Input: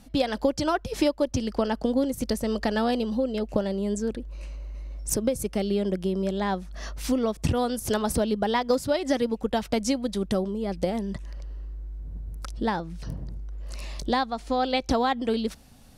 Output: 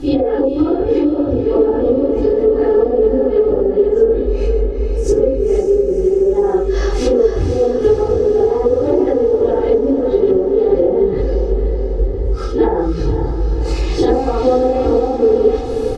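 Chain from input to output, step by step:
random phases in long frames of 200 ms
bad sample-rate conversion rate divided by 2×, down none, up hold
low-pass filter 7,500 Hz 12 dB per octave
treble cut that deepens with the level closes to 440 Hz, closed at −19.5 dBFS
comb filter 2.4 ms, depth 98%
downward compressor, threshold −33 dBFS, peak gain reduction 15.5 dB
low shelf with overshoot 600 Hz +13.5 dB, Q 1.5
speech leveller 0.5 s
drawn EQ curve 160 Hz 0 dB, 1,300 Hz +14 dB, 2,000 Hz +9 dB
feedback delay with all-pass diffusion 517 ms, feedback 64%, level −8 dB
level +2 dB

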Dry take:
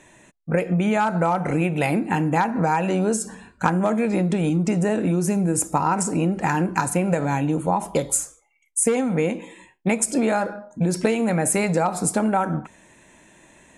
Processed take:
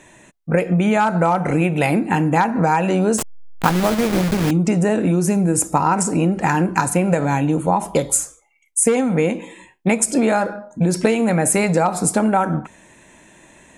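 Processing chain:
0:03.18–0:04.51: hold until the input has moved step −21 dBFS
level +4 dB

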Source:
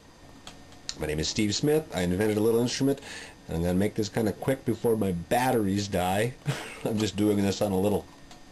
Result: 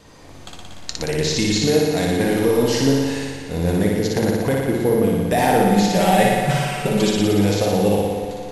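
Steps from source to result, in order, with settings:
0:05.60–0:07.17: comb filter 5.2 ms, depth 90%
flutter between parallel walls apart 10.1 metres, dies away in 1.5 s
spring reverb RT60 3.6 s, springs 45 ms, chirp 20 ms, DRR 9.5 dB
level +4.5 dB

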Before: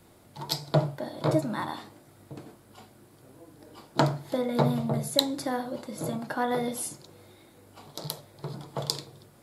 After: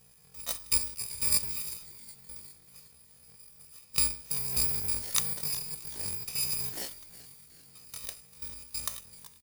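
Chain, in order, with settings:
samples in bit-reversed order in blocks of 256 samples
echo with shifted repeats 379 ms, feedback 49%, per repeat −76 Hz, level −17.5 dB
pitch shifter +10 semitones

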